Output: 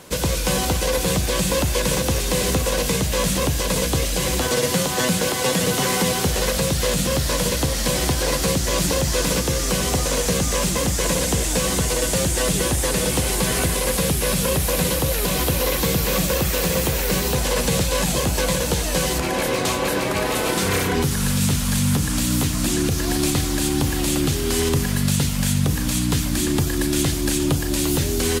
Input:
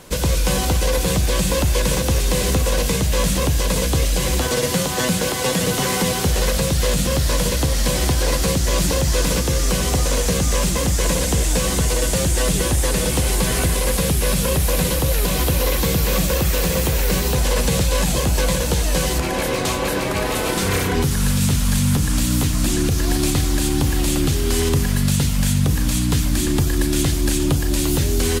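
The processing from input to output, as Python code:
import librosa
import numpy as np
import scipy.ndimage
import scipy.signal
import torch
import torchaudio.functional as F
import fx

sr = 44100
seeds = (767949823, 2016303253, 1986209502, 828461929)

y = fx.highpass(x, sr, hz=99.0, slope=6)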